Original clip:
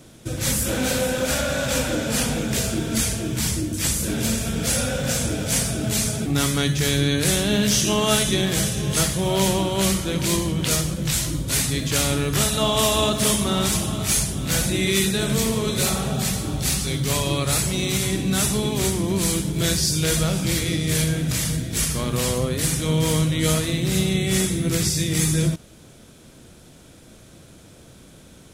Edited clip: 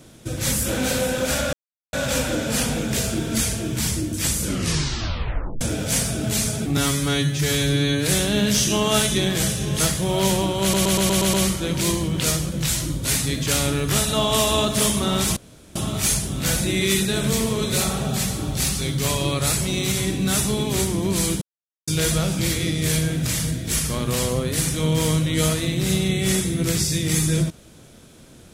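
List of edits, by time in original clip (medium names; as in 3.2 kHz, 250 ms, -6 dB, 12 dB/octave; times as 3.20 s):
1.53 s: insert silence 0.40 s
4.00 s: tape stop 1.21 s
6.37–7.24 s: stretch 1.5×
9.78 s: stutter 0.12 s, 7 plays
13.81 s: insert room tone 0.39 s
19.47–19.93 s: mute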